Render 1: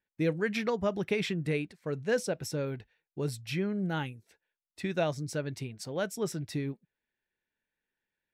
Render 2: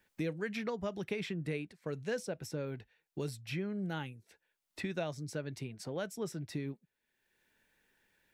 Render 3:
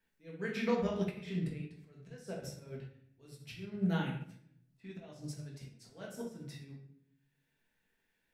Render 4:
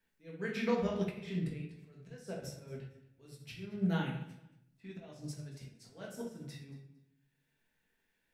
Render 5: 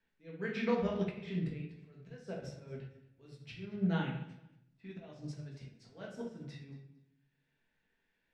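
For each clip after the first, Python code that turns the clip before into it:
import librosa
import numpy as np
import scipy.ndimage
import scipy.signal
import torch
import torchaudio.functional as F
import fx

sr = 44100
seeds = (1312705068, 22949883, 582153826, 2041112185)

y1 = fx.band_squash(x, sr, depth_pct=70)
y1 = y1 * 10.0 ** (-6.5 / 20.0)
y2 = fx.auto_swell(y1, sr, attack_ms=305.0)
y2 = fx.room_shoebox(y2, sr, seeds[0], volume_m3=210.0, walls='mixed', distance_m=1.6)
y2 = fx.upward_expand(y2, sr, threshold_db=-49.0, expansion=1.5)
y3 = fx.echo_feedback(y2, sr, ms=228, feedback_pct=19, wet_db=-19.5)
y4 = scipy.signal.sosfilt(scipy.signal.butter(2, 4400.0, 'lowpass', fs=sr, output='sos'), y3)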